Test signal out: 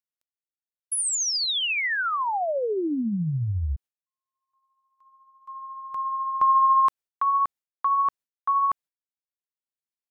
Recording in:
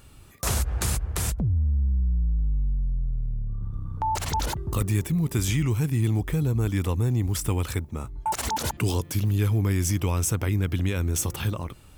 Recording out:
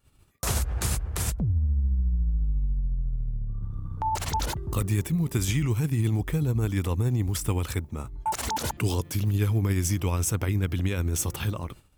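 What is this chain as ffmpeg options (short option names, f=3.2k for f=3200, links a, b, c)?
-af "tremolo=f=14:d=0.29,acompressor=mode=upward:threshold=-47dB:ratio=2.5,agate=range=-33dB:threshold=-41dB:ratio=3:detection=peak"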